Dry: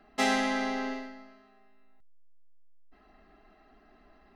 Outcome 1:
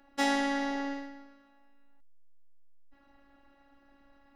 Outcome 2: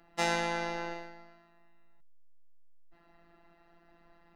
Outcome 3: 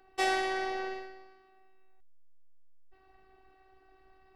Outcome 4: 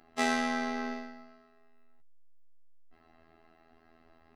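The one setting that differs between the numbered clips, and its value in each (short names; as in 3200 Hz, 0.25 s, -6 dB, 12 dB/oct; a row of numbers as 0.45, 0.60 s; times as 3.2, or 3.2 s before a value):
robotiser, frequency: 280, 170, 380, 82 Hz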